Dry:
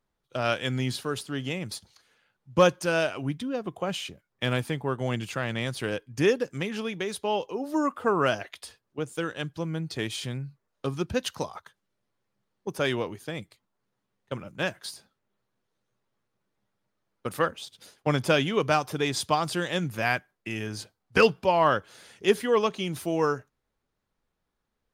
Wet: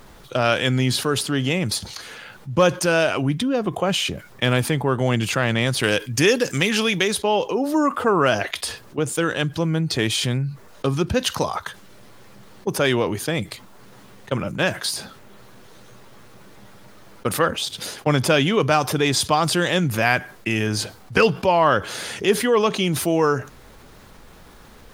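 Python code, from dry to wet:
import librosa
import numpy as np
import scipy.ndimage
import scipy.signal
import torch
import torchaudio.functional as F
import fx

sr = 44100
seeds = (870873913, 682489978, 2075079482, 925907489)

y = fx.high_shelf(x, sr, hz=2000.0, db=11.0, at=(5.83, 7.08))
y = fx.env_flatten(y, sr, amount_pct=50)
y = y * librosa.db_to_amplitude(2.0)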